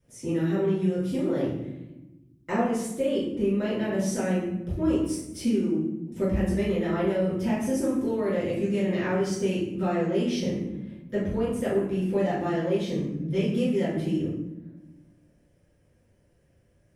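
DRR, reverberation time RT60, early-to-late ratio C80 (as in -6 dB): -10.5 dB, not exponential, 5.5 dB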